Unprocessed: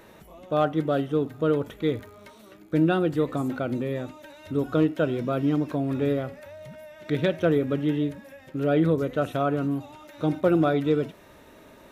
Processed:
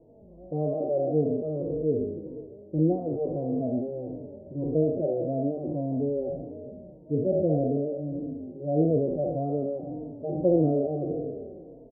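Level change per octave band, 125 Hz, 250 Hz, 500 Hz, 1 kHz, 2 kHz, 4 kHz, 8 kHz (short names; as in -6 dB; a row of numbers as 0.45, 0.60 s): -2.0 dB, -3.0 dB, -0.5 dB, -7.5 dB, under -40 dB, under -40 dB, n/a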